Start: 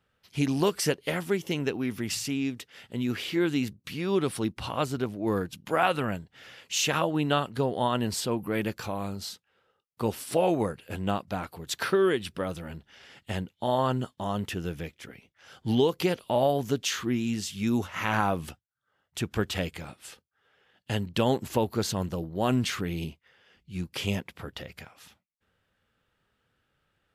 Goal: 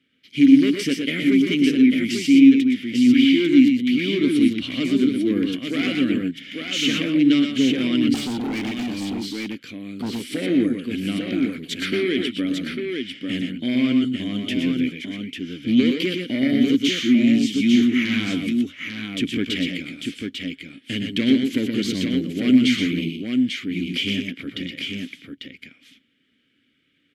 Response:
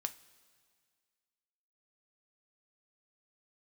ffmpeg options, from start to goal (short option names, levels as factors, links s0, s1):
-filter_complex "[0:a]highshelf=f=5700:g=11,aeval=exprs='0.335*sin(PI/2*2.82*val(0)/0.335)':c=same,asplit=3[s0][s1][s2];[s0]bandpass=f=270:t=q:w=8,volume=1[s3];[s1]bandpass=f=2290:t=q:w=8,volume=0.501[s4];[s2]bandpass=f=3010:t=q:w=8,volume=0.355[s5];[s3][s4][s5]amix=inputs=3:normalize=0,aecho=1:1:104|121|846:0.266|0.531|0.562,asettb=1/sr,asplit=3[s6][s7][s8];[s6]atrim=end=8.144[s9];[s7]atrim=start=8.14:end=10.35,asetpts=PTS-STARTPTS,afade=t=in:d=0.004:c=qsin,afade=t=out:st=2.206:d=0.004:c=qsin,volume=31.6,asoftclip=hard,volume=0.0316[s10];[s8]atrim=start=10.346[s11];[s9][s10]acrossfade=d=0.004:c1=hsin:c2=qsin[s12];[s12][s11]acrossfade=d=0.004:c1=qsin:c2=hsin,volume=2.11"